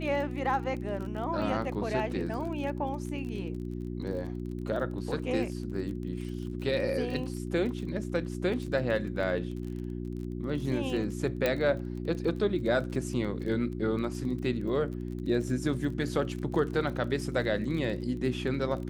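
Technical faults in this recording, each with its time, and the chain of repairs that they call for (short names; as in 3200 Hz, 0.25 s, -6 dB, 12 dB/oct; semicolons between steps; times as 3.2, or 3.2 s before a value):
crackle 29/s -37 dBFS
hum 60 Hz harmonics 6 -36 dBFS
11.46 pop -13 dBFS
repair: de-click; de-hum 60 Hz, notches 6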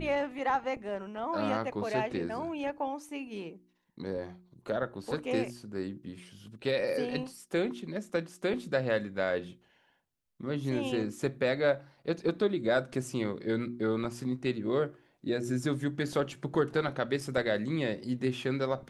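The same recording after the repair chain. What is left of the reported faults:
none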